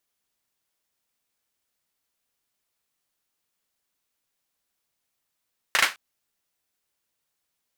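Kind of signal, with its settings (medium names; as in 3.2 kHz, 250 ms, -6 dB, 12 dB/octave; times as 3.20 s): hand clap length 0.21 s, bursts 3, apart 37 ms, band 1.8 kHz, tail 0.23 s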